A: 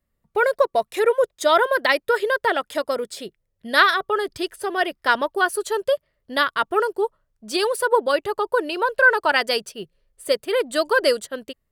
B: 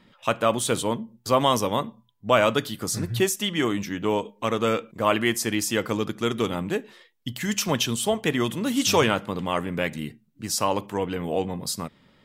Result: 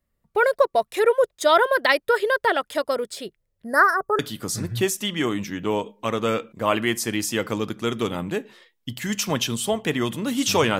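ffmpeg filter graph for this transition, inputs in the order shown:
ffmpeg -i cue0.wav -i cue1.wav -filter_complex "[0:a]asettb=1/sr,asplit=3[link_01][link_02][link_03];[link_01]atrim=end=3.644[link_04];[link_02]atrim=start=3.64:end=4.19,asetpts=PTS-STARTPTS,afade=type=in:duration=0.004:curve=qsin,afade=type=out:start_time=0.546:duration=0.004:curve=qsin,asuperstop=centerf=3100:order=8:qfactor=0.85[link_05];[link_03]atrim=start=4.186[link_06];[link_04][link_05]acrossfade=duration=0.004:curve1=hsin:curve2=qsin[link_07];[link_07][link_06]acrossfade=duration=0.004:curve1=qsin:curve2=hsin,apad=whole_dur=10.79,atrim=end=10.79,atrim=end=4.192[link_08];[1:a]atrim=start=2.578:end=9.18[link_09];[link_08][link_09]acrossfade=duration=0.004:curve1=hsin:curve2=hsin" out.wav

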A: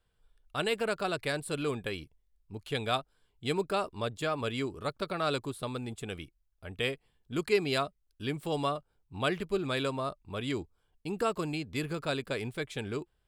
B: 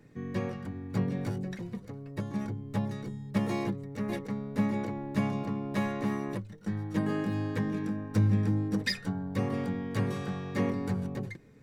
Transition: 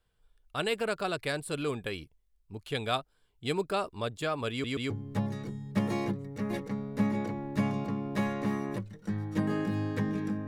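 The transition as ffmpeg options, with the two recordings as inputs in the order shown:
ffmpeg -i cue0.wav -i cue1.wav -filter_complex "[0:a]apad=whole_dur=10.47,atrim=end=10.47,asplit=3[link_01][link_02][link_03];[link_01]atrim=end=4.642[link_04];[link_02]atrim=start=4.508:end=4.642[link_05];[link_03]atrim=start=4.508:end=4.642[link_06];[1:a]atrim=start=2.488:end=8.06[link_07];[link_04][link_05]acrossfade=duration=0.004:curve1=hsin:curve2=hsin[link_08];[link_08][link_06]acrossfade=duration=0.004:curve1=hsin:curve2=hsin[link_09];[link_09][link_07]acrossfade=duration=0.004:curve1=hsin:curve2=hsin" out.wav

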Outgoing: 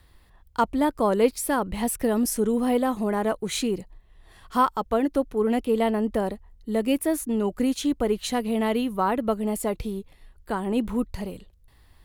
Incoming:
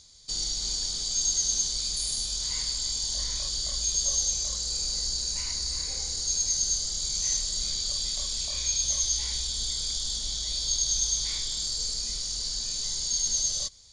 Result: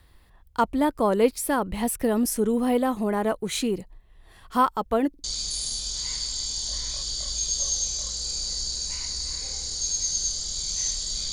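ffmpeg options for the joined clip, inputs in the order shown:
ffmpeg -i cue0.wav -i cue1.wav -filter_complex "[0:a]apad=whole_dur=11.32,atrim=end=11.32,asplit=3[link_01][link_02][link_03];[link_01]atrim=end=5.142[link_04];[link_02]atrim=start=5.088:end=5.142[link_05];[link_03]atrim=start=5.088:end=5.142[link_06];[1:a]atrim=start=1.698:end=7.78[link_07];[link_04][link_05]acrossfade=duration=0.004:curve1=hsin:curve2=hsin[link_08];[link_08][link_06]acrossfade=duration=0.004:curve1=hsin:curve2=hsin[link_09];[link_09][link_07]acrossfade=duration=0.004:curve1=hsin:curve2=hsin" out.wav

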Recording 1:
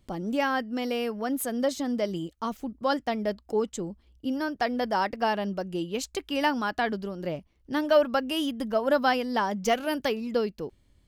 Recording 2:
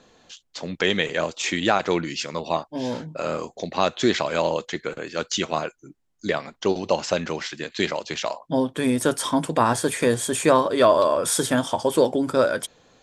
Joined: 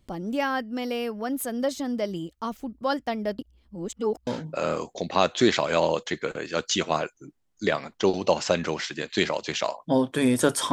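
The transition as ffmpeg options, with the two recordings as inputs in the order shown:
ffmpeg -i cue0.wav -i cue1.wav -filter_complex "[0:a]apad=whole_dur=10.72,atrim=end=10.72,asplit=2[link_01][link_02];[link_01]atrim=end=3.392[link_03];[link_02]atrim=start=3.388:end=4.272,asetpts=PTS-STARTPTS,areverse[link_04];[1:a]atrim=start=2.888:end=9.34[link_05];[link_03][link_04]acrossfade=duration=0.004:curve1=hsin:curve2=hsin[link_06];[link_06][link_05]acrossfade=duration=0.004:curve1=hsin:curve2=hsin" out.wav

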